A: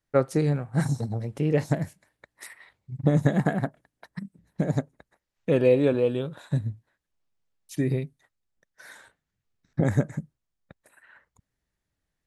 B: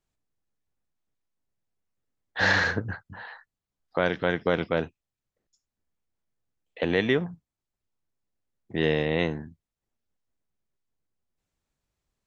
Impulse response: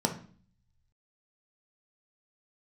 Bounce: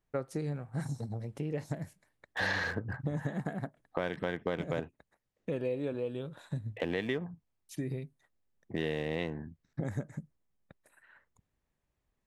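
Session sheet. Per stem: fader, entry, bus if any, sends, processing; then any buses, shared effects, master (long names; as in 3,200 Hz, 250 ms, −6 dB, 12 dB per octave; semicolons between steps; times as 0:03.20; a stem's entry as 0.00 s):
−6.5 dB, 0.00 s, no send, no processing
+0.5 dB, 0.00 s, no send, adaptive Wiener filter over 9 samples; notch filter 1,400 Hz, Q 11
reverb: not used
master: downward compressor 2.5 to 1, threshold −34 dBFS, peak gain reduction 11 dB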